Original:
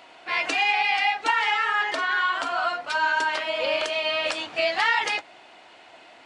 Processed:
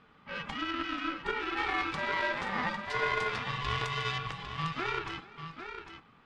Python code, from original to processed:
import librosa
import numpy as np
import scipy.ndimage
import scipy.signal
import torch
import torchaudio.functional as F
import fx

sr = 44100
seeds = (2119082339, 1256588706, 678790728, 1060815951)

y = fx.lowpass(x, sr, hz=fx.steps((0.0, 1000.0), (1.57, 3800.0), (4.18, 1000.0)), slope=6)
y = y * np.sin(2.0 * np.pi * 500.0 * np.arange(len(y)) / sr)
y = fx.tube_stage(y, sr, drive_db=18.0, bias=0.8)
y = fx.echo_multitap(y, sr, ms=(434, 802), db=(-20.0, -9.0))